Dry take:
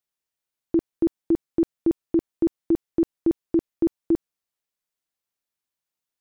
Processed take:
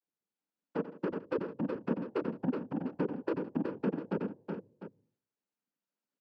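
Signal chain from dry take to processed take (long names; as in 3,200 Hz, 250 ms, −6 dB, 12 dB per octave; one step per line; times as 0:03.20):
vocoder with an arpeggio as carrier minor triad, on G3, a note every 345 ms
hum removal 173.1 Hz, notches 4
downward compressor 8 to 1, threshold −26 dBFS, peak gain reduction 10.5 dB
soft clipping −32.5 dBFS, distortion −8 dB
cochlear-implant simulation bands 8
multi-tap delay 90/163/372/701 ms −13/−19.5/−5/−12.5 dB
level +4.5 dB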